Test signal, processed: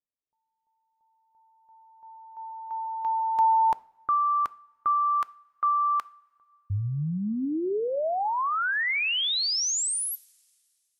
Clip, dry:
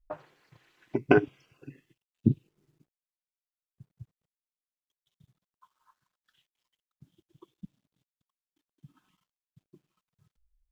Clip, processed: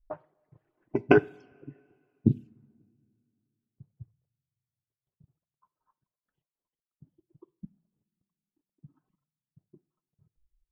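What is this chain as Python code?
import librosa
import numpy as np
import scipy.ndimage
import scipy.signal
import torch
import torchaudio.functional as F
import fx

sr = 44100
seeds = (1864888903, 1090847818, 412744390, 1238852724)

y = fx.env_lowpass(x, sr, base_hz=600.0, full_db=-24.0)
y = fx.dereverb_blind(y, sr, rt60_s=0.6)
y = fx.rev_double_slope(y, sr, seeds[0], early_s=0.46, late_s=2.5, knee_db=-18, drr_db=17.5)
y = y * 10.0 ** (1.0 / 20.0)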